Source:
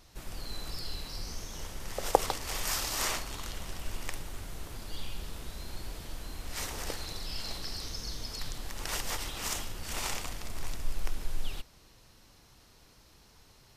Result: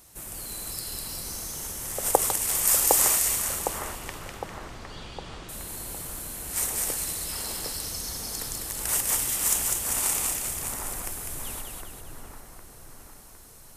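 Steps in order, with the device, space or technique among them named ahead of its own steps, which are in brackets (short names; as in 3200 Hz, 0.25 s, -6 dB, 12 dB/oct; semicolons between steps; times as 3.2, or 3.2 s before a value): 3.59–5.49 LPF 5100 Hz 24 dB/oct; budget condenser microphone (HPF 78 Hz 6 dB/oct; resonant high shelf 6600 Hz +12 dB, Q 1.5); split-band echo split 1800 Hz, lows 0.759 s, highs 0.2 s, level -3 dB; gain +2 dB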